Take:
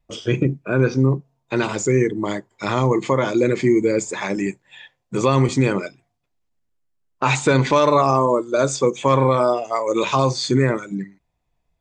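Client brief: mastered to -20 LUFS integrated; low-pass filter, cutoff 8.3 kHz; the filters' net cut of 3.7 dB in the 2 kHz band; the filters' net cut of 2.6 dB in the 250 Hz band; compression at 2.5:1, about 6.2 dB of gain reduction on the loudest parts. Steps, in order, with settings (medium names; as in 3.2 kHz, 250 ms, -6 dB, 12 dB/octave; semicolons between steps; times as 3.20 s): low-pass 8.3 kHz; peaking EQ 250 Hz -3.5 dB; peaking EQ 2 kHz -5 dB; compression 2.5:1, threshold -22 dBFS; trim +6 dB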